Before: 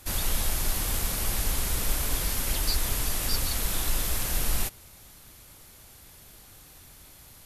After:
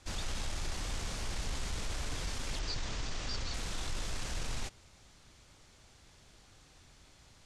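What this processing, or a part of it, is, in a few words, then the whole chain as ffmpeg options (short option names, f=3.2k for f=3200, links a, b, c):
synthesiser wavefolder: -filter_complex "[0:a]aeval=exprs='0.075*(abs(mod(val(0)/0.075+3,4)-2)-1)':c=same,lowpass=f=7.3k:w=0.5412,lowpass=f=7.3k:w=1.3066,asettb=1/sr,asplit=3[a][b][c];[a]atrim=end=2.594[d];[b]atrim=start=2.59:end=3.54,asetpts=PTS-STARTPTS,afade=t=in:d=0.004:c=qsin,afade=t=out:st=0.946:d=0.004:c=qsin,lowpass=f=7.1k:w=0.5412,lowpass=f=7.1k:w=1.3066[e];[c]atrim=start=3.536[f];[d][e]acrossfade=d=0.004:c1=hsin:c2=qsin[g];[g][f]acrossfade=d=0.004:c1=qsin:c2=hsin,volume=-6.5dB"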